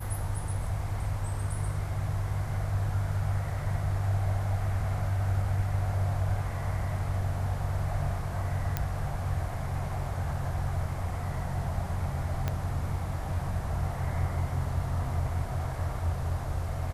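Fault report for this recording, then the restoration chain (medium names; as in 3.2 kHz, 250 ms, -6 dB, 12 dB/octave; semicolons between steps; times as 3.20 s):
8.77 s: pop -14 dBFS
12.48 s: pop -16 dBFS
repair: de-click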